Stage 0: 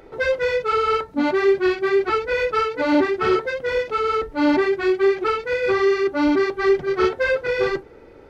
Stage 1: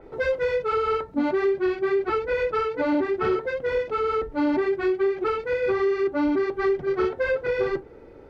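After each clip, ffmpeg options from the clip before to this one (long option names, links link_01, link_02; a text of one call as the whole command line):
ffmpeg -i in.wav -af "tiltshelf=frequency=1200:gain=3.5,acompressor=threshold=-16dB:ratio=6,adynamicequalizer=threshold=0.00891:dfrequency=4100:dqfactor=0.7:tfrequency=4100:tqfactor=0.7:attack=5:release=100:ratio=0.375:range=2.5:mode=cutabove:tftype=highshelf,volume=-3.5dB" out.wav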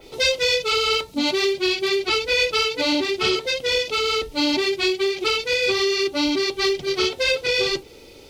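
ffmpeg -i in.wav -af "aexciter=amount=12.5:drive=7.9:freq=2600" out.wav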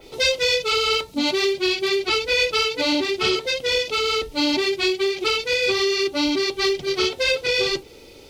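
ffmpeg -i in.wav -af anull out.wav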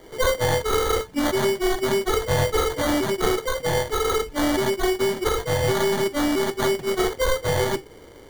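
ffmpeg -i in.wav -filter_complex "[0:a]acrossover=split=4700[link_01][link_02];[link_02]aeval=exprs='abs(val(0))':channel_layout=same[link_03];[link_01][link_03]amix=inputs=2:normalize=0,acrusher=samples=17:mix=1:aa=0.000001" out.wav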